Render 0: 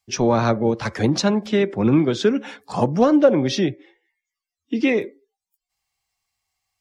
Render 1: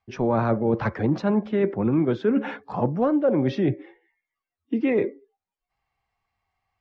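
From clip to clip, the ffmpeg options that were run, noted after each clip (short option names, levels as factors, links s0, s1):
-af "areverse,acompressor=threshold=0.0501:ratio=5,areverse,lowpass=1700,volume=2.11"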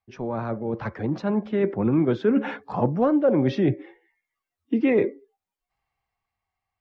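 -af "dynaudnorm=f=210:g=13:m=3.76,volume=0.447"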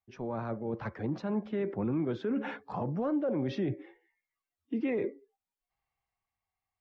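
-af "alimiter=limit=0.141:level=0:latency=1:release=38,volume=0.447"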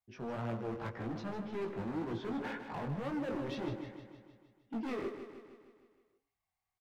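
-af "asoftclip=type=hard:threshold=0.0178,flanger=delay=17:depth=4.4:speed=1.9,aecho=1:1:155|310|465|620|775|930|1085:0.335|0.194|0.113|0.0654|0.0379|0.022|0.0128,volume=1.19"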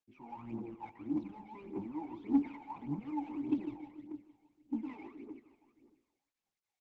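-filter_complex "[0:a]asplit=3[s0][s1][s2];[s0]bandpass=f=300:t=q:w=8,volume=1[s3];[s1]bandpass=f=870:t=q:w=8,volume=0.501[s4];[s2]bandpass=f=2240:t=q:w=8,volume=0.355[s5];[s3][s4][s5]amix=inputs=3:normalize=0,aphaser=in_gain=1:out_gain=1:delay=1.4:decay=0.78:speed=1.7:type=triangular,volume=1.58" -ar 48000 -c:a libopus -b:a 12k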